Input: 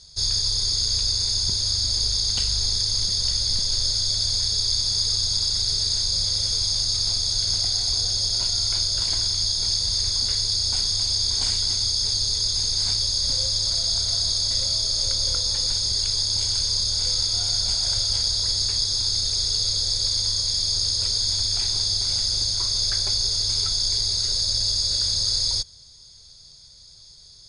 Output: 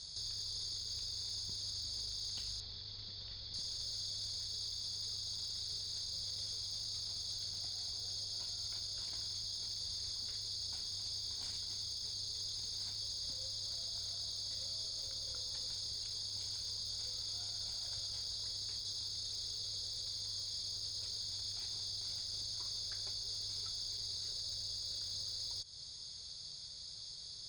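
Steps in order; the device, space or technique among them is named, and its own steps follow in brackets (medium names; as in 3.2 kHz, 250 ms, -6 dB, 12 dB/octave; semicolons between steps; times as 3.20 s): broadcast voice chain (high-pass 79 Hz 6 dB/octave; de-esser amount 50%; compression 4:1, threshold -34 dBFS, peak gain reduction 10 dB; peaking EQ 3.9 kHz +4.5 dB 0.48 oct; peak limiter -31 dBFS, peak gain reduction 9.5 dB); 2.60–3.54 s: low-pass 4.1 kHz 24 dB/octave; trim -2.5 dB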